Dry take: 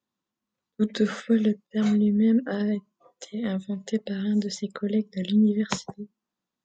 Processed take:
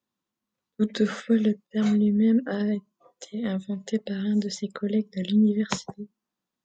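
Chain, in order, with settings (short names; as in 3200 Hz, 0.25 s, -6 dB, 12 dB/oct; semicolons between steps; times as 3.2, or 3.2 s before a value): 2.74–3.45 dynamic EQ 1600 Hz, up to -4 dB, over -56 dBFS, Q 0.84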